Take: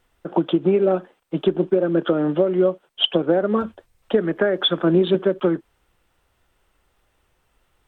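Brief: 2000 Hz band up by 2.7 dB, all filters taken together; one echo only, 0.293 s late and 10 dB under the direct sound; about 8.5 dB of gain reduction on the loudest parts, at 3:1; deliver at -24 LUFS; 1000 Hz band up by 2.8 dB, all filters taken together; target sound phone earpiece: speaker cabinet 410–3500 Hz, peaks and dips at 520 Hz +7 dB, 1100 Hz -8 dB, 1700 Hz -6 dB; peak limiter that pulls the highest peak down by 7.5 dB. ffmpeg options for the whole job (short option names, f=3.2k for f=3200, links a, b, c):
-af "equalizer=f=1k:t=o:g=5.5,equalizer=f=2k:t=o:g=8,acompressor=threshold=-22dB:ratio=3,alimiter=limit=-16.5dB:level=0:latency=1,highpass=410,equalizer=f=520:t=q:w=4:g=7,equalizer=f=1.1k:t=q:w=4:g=-8,equalizer=f=1.7k:t=q:w=4:g=-6,lowpass=f=3.5k:w=0.5412,lowpass=f=3.5k:w=1.3066,aecho=1:1:293:0.316,volume=4dB"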